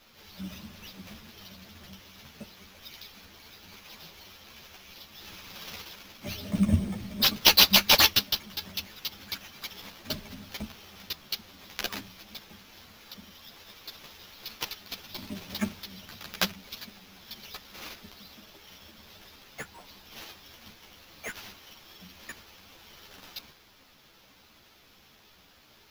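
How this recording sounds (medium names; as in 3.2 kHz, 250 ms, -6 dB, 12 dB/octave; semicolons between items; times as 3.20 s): aliases and images of a low sample rate 8.7 kHz, jitter 0%; a shimmering, thickened sound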